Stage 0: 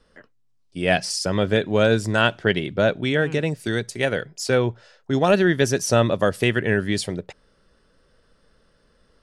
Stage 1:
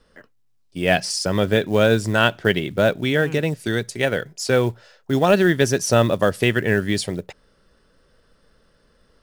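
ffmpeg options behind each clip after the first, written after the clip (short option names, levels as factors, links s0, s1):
-af "acrusher=bits=7:mode=log:mix=0:aa=0.000001,volume=1.19"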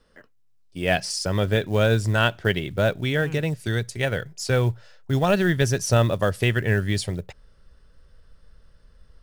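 -af "asubboost=boost=6.5:cutoff=110,volume=0.668"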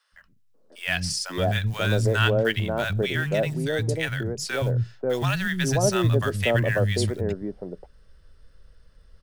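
-filter_complex "[0:a]acrossover=split=200|910[s0][s1][s2];[s0]adelay=120[s3];[s1]adelay=540[s4];[s3][s4][s2]amix=inputs=3:normalize=0"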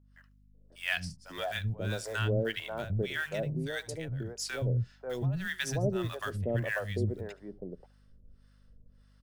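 -filter_complex "[0:a]aecho=1:1:73:0.0841,acrossover=split=600[s0][s1];[s0]aeval=exprs='val(0)*(1-1/2+1/2*cos(2*PI*1.7*n/s))':c=same[s2];[s1]aeval=exprs='val(0)*(1-1/2-1/2*cos(2*PI*1.7*n/s))':c=same[s3];[s2][s3]amix=inputs=2:normalize=0,aeval=exprs='val(0)+0.00158*(sin(2*PI*50*n/s)+sin(2*PI*2*50*n/s)/2+sin(2*PI*3*50*n/s)/3+sin(2*PI*4*50*n/s)/4+sin(2*PI*5*50*n/s)/5)':c=same,volume=0.596"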